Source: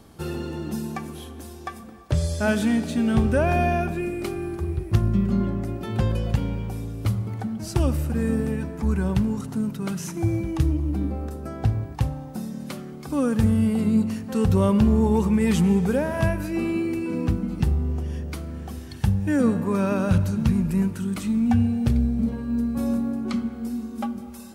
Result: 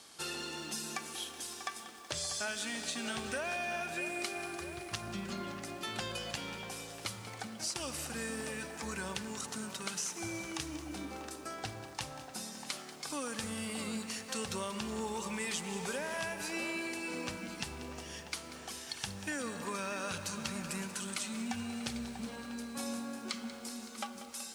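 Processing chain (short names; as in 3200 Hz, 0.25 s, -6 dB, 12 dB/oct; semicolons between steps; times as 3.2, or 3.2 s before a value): weighting filter ITU-R 468; compressor, threshold -30 dBFS, peak gain reduction 11.5 dB; narrowing echo 0.642 s, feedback 67%, band-pass 810 Hz, level -8.5 dB; lo-fi delay 0.188 s, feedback 80%, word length 8-bit, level -13.5 dB; gain -4.5 dB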